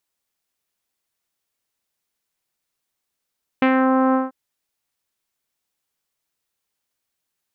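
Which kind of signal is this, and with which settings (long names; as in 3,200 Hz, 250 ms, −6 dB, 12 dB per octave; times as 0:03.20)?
subtractive voice saw C4 24 dB per octave, low-pass 1,300 Hz, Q 1.5, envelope 1 octave, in 0.27 s, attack 2.8 ms, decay 0.08 s, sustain −2.5 dB, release 0.17 s, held 0.52 s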